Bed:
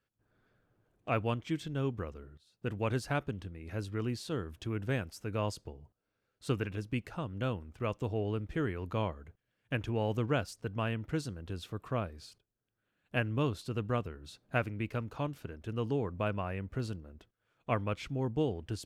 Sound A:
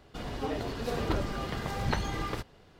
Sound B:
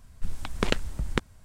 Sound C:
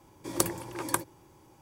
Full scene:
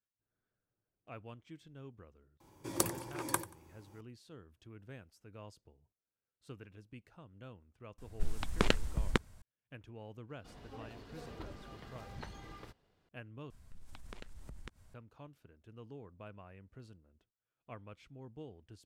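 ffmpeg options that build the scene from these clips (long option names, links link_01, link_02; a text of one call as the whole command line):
ffmpeg -i bed.wav -i cue0.wav -i cue1.wav -i cue2.wav -filter_complex "[2:a]asplit=2[link_01][link_02];[0:a]volume=-17.5dB[link_03];[3:a]aecho=1:1:91|182:0.141|0.0325[link_04];[link_02]acompressor=threshold=-37dB:ratio=6:attack=3.2:release=140:knee=1:detection=peak[link_05];[link_03]asplit=2[link_06][link_07];[link_06]atrim=end=13.504[link_08];[link_05]atrim=end=1.44,asetpts=PTS-STARTPTS,volume=-8dB[link_09];[link_07]atrim=start=14.936[link_10];[link_04]atrim=end=1.61,asetpts=PTS-STARTPTS,volume=-5dB,afade=type=in:duration=0.004:curve=hsin,afade=type=out:start_time=1.606:duration=0.004:curve=hsin,adelay=2400[link_11];[link_01]atrim=end=1.44,asetpts=PTS-STARTPTS,volume=-3.5dB,afade=type=in:duration=0.004:curve=hsin,afade=type=out:start_time=1.436:duration=0.004:curve=hsin,adelay=7980[link_12];[1:a]atrim=end=2.79,asetpts=PTS-STARTPTS,volume=-17dB,afade=type=in:duration=0.004:curve=hsin,afade=type=out:start_time=2.786:duration=0.004:curve=hsin,adelay=10300[link_13];[link_08][link_09]acrossfade=duration=0.004:curve1=hsin:curve2=hsin[link_14];[link_14][link_10]acrossfade=duration=0.004:curve1=hsin:curve2=hsin[link_15];[link_15][link_11][link_12][link_13]amix=inputs=4:normalize=0" out.wav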